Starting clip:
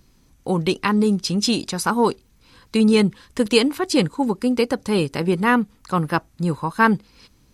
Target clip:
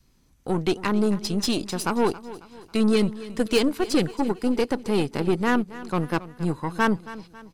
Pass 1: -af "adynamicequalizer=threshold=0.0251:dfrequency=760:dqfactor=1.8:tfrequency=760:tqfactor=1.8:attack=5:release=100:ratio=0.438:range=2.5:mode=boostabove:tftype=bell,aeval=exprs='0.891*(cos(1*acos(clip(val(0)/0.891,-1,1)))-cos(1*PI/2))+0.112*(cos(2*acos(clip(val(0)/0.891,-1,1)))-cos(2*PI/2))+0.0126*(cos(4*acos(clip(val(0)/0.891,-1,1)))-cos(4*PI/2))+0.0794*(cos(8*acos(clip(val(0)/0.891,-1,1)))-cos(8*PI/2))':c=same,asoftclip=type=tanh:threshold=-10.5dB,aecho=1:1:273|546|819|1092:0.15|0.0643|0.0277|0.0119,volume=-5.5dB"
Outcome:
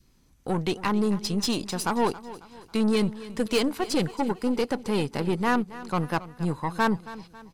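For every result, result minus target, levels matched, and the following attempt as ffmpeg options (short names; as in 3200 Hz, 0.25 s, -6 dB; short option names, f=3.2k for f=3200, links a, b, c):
soft clip: distortion +10 dB; 1000 Hz band +2.5 dB
-af "adynamicequalizer=threshold=0.0251:dfrequency=760:dqfactor=1.8:tfrequency=760:tqfactor=1.8:attack=5:release=100:ratio=0.438:range=2.5:mode=boostabove:tftype=bell,aeval=exprs='0.891*(cos(1*acos(clip(val(0)/0.891,-1,1)))-cos(1*PI/2))+0.112*(cos(2*acos(clip(val(0)/0.891,-1,1)))-cos(2*PI/2))+0.0126*(cos(4*acos(clip(val(0)/0.891,-1,1)))-cos(4*PI/2))+0.0794*(cos(8*acos(clip(val(0)/0.891,-1,1)))-cos(8*PI/2))':c=same,asoftclip=type=tanh:threshold=-4dB,aecho=1:1:273|546|819|1092:0.15|0.0643|0.0277|0.0119,volume=-5.5dB"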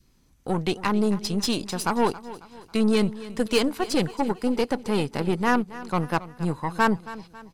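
1000 Hz band +3.0 dB
-af "adynamicequalizer=threshold=0.0251:dfrequency=340:dqfactor=1.8:tfrequency=340:tqfactor=1.8:attack=5:release=100:ratio=0.438:range=2.5:mode=boostabove:tftype=bell,aeval=exprs='0.891*(cos(1*acos(clip(val(0)/0.891,-1,1)))-cos(1*PI/2))+0.112*(cos(2*acos(clip(val(0)/0.891,-1,1)))-cos(2*PI/2))+0.0126*(cos(4*acos(clip(val(0)/0.891,-1,1)))-cos(4*PI/2))+0.0794*(cos(8*acos(clip(val(0)/0.891,-1,1)))-cos(8*PI/2))':c=same,asoftclip=type=tanh:threshold=-4dB,aecho=1:1:273|546|819|1092:0.15|0.0643|0.0277|0.0119,volume=-5.5dB"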